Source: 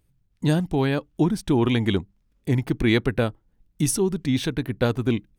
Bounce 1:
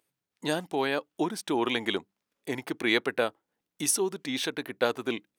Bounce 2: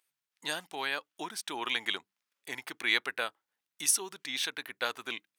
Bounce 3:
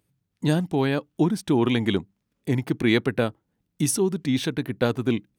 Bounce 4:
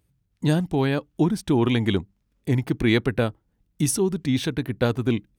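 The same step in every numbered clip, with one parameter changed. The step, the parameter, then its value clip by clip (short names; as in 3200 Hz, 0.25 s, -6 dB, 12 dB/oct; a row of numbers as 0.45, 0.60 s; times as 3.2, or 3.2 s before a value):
HPF, cutoff: 470, 1200, 130, 47 Hz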